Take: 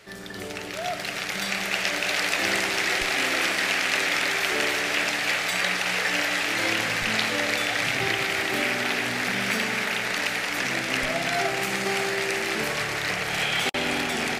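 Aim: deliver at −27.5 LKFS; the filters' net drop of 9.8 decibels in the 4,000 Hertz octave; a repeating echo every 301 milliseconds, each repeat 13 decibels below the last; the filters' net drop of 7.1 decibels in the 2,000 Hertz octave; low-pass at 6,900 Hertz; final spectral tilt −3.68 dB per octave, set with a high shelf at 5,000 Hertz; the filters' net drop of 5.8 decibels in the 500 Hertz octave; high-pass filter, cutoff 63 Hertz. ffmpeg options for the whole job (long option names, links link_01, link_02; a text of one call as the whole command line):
ffmpeg -i in.wav -af "highpass=63,lowpass=6900,equalizer=frequency=500:width_type=o:gain=-7.5,equalizer=frequency=2000:width_type=o:gain=-5,equalizer=frequency=4000:width_type=o:gain=-7,highshelf=frequency=5000:gain=-8.5,aecho=1:1:301|602|903:0.224|0.0493|0.0108,volume=3.5dB" out.wav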